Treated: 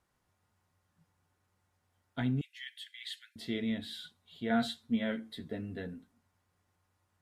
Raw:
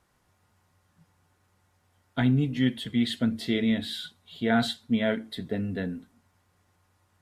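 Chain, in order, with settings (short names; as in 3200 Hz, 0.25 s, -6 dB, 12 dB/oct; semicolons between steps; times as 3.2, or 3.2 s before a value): 2.41–3.36 steep high-pass 1600 Hz 72 dB/oct; 4.49–5.94 doubler 13 ms -5 dB; gain -9 dB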